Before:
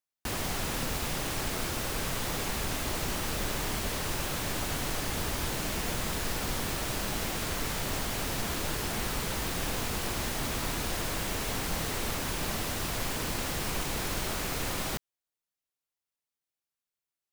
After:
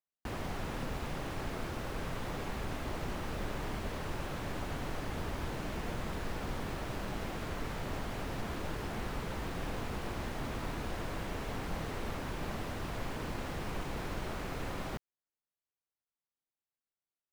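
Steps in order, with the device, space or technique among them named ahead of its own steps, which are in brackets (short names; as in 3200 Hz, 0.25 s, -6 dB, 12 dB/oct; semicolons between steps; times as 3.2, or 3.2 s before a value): through cloth (high shelf 3500 Hz -17 dB); gain -3.5 dB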